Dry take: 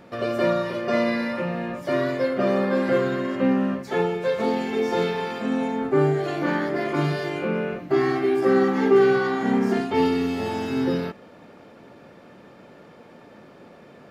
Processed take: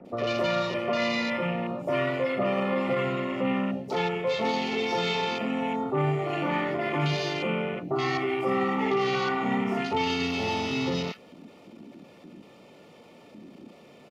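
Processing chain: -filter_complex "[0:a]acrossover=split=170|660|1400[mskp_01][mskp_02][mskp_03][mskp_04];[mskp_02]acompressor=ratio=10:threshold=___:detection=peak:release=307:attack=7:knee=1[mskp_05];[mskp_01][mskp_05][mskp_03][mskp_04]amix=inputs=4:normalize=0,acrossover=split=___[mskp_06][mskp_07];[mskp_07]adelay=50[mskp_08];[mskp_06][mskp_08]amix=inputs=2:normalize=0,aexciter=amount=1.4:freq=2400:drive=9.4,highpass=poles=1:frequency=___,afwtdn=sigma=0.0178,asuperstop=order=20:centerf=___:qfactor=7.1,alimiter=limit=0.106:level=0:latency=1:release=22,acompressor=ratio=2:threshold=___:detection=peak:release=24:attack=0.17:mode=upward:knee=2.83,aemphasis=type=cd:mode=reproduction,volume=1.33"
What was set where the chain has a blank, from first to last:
0.02, 1400, 100, 1600, 0.0126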